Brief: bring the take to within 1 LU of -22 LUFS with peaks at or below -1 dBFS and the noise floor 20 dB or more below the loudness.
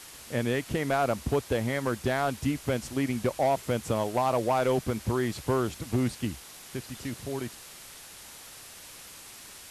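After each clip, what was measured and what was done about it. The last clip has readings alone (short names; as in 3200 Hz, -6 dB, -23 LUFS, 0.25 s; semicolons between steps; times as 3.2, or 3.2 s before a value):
clipped 0.6%; flat tops at -18.5 dBFS; noise floor -47 dBFS; noise floor target -50 dBFS; loudness -29.5 LUFS; peak -18.5 dBFS; loudness target -22.0 LUFS
-> clip repair -18.5 dBFS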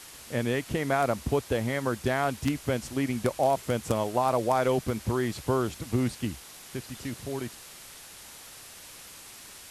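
clipped 0.0%; noise floor -47 dBFS; noise floor target -49 dBFS
-> denoiser 6 dB, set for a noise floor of -47 dBFS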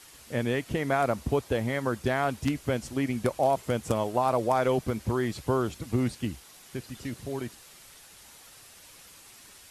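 noise floor -52 dBFS; loudness -29.0 LUFS; peak -10.0 dBFS; loudness target -22.0 LUFS
-> gain +7 dB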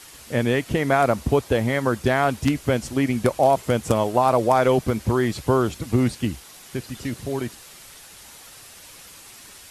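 loudness -22.0 LUFS; peak -3.0 dBFS; noise floor -45 dBFS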